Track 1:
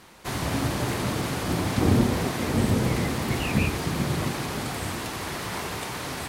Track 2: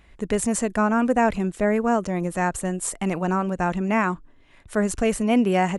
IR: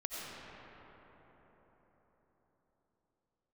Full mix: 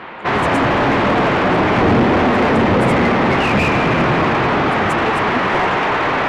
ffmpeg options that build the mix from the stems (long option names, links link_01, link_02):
-filter_complex "[0:a]lowpass=frequency=3000:width=0.5412,lowpass=frequency=3000:width=1.3066,volume=0.5dB,asplit=2[link_01][link_02];[link_02]volume=-3.5dB[link_03];[1:a]aeval=exprs='val(0)*pow(10,-19*(0.5-0.5*cos(2*PI*11*n/s))/20)':channel_layout=same,volume=-9dB[link_04];[2:a]atrim=start_sample=2205[link_05];[link_03][link_05]afir=irnorm=-1:irlink=0[link_06];[link_01][link_04][link_06]amix=inputs=3:normalize=0,asplit=2[link_07][link_08];[link_08]highpass=frequency=720:poles=1,volume=27dB,asoftclip=type=tanh:threshold=-5dB[link_09];[link_07][link_09]amix=inputs=2:normalize=0,lowpass=frequency=1500:poles=1,volume=-6dB"